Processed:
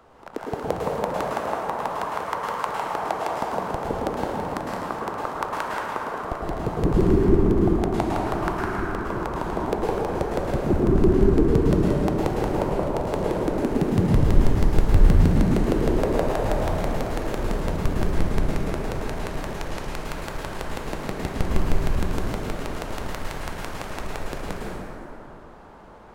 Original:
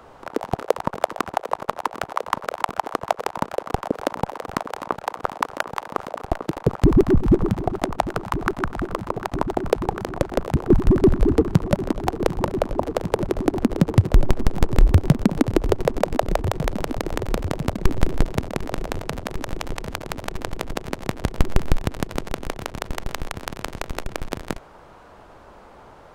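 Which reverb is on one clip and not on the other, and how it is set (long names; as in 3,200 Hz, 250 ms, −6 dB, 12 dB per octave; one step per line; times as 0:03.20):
dense smooth reverb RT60 3 s, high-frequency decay 0.45×, pre-delay 95 ms, DRR −5 dB
level −7.5 dB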